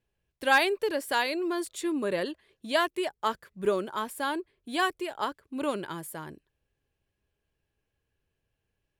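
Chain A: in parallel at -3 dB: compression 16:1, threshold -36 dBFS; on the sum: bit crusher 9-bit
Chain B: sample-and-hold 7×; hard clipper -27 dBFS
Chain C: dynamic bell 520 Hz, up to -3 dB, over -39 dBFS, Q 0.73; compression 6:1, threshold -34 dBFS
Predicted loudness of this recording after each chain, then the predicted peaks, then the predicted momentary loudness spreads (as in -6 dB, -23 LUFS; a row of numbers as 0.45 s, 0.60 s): -28.5 LUFS, -33.0 LUFS, -39.0 LUFS; -10.5 dBFS, -27.0 dBFS, -23.5 dBFS; 11 LU, 8 LU, 5 LU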